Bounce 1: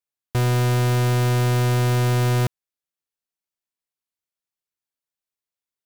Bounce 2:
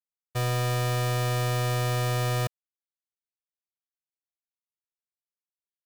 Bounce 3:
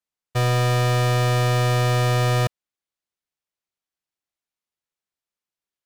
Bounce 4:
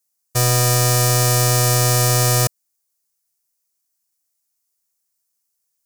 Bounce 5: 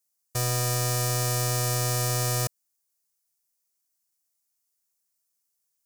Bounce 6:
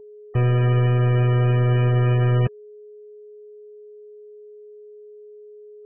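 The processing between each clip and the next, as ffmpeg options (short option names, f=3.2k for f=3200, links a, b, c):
-af "agate=range=-33dB:threshold=-13dB:ratio=3:detection=peak,lowshelf=f=250:g=-7.5,aecho=1:1:1.7:0.75,volume=6.5dB"
-af "highshelf=f=10k:g=-11,volume=7dB"
-af "aexciter=amount=7.1:drive=3.9:freq=4.9k,volume=2dB"
-af "alimiter=limit=-10dB:level=0:latency=1:release=43,volume=-4dB"
-af "lowshelf=f=480:t=q:w=1.5:g=8,aeval=exprs='val(0)+0.00708*sin(2*PI*420*n/s)':c=same,volume=3dB" -ar 16000 -c:a libmp3lame -b:a 8k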